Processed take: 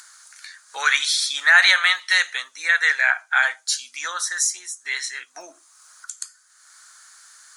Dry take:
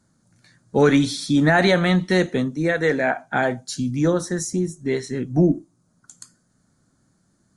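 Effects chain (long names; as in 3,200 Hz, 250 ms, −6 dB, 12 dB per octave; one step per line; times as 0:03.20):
high-pass filter 1,300 Hz 24 dB per octave
in parallel at −1.5 dB: upward compression, threshold −33 dBFS
on the sum: level +3.5 dB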